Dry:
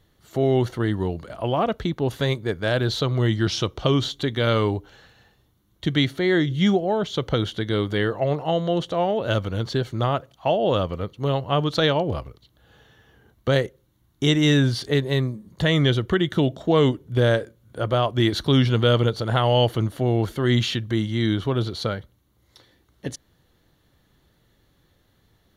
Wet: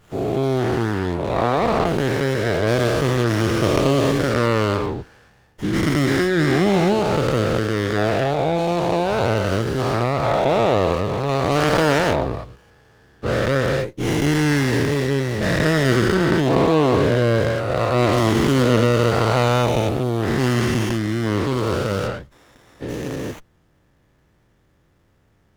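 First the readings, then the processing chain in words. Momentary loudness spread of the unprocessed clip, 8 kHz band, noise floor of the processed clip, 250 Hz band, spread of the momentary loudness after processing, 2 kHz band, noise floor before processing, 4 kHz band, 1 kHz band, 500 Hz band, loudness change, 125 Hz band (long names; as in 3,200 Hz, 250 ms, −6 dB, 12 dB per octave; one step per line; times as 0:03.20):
9 LU, +8.0 dB, −60 dBFS, +3.5 dB, 6 LU, +5.5 dB, −64 dBFS, −1.5 dB, +6.0 dB, +4.5 dB, +3.0 dB, +2.0 dB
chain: every bin's largest magnitude spread in time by 480 ms
windowed peak hold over 9 samples
level −3.5 dB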